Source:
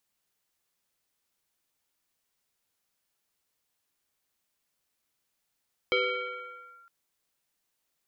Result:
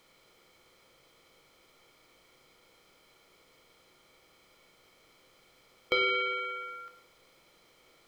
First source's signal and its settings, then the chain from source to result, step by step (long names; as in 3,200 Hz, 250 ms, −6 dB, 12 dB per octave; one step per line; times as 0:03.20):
two-operator FM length 0.96 s, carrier 1,380 Hz, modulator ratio 0.64, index 2, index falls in 0.96 s linear, decay 1.69 s, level −21 dB
compressor on every frequency bin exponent 0.6
rectangular room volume 140 cubic metres, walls mixed, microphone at 0.6 metres